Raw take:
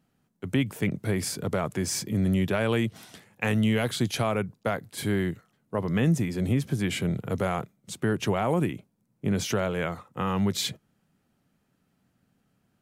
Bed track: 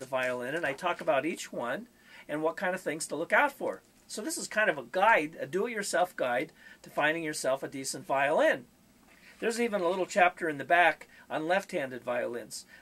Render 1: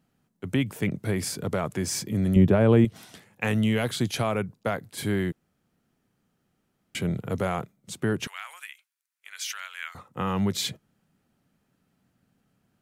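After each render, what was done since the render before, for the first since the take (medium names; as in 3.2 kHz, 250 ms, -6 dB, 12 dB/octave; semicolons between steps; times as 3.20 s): 2.36–2.85 s: tilt shelf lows +9 dB, about 1.2 kHz; 5.32–6.95 s: room tone; 8.27–9.95 s: high-pass 1.5 kHz 24 dB/octave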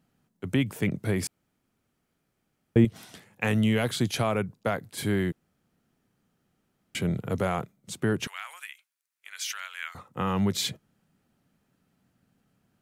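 1.27–2.76 s: room tone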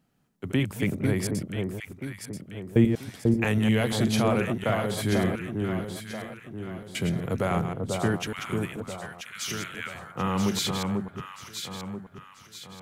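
chunks repeated in reverse 119 ms, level -7 dB; echo whose repeats swap between lows and highs 492 ms, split 1.2 kHz, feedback 64%, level -3 dB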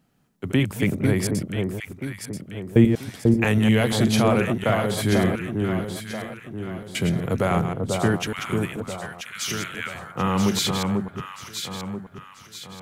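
trim +4.5 dB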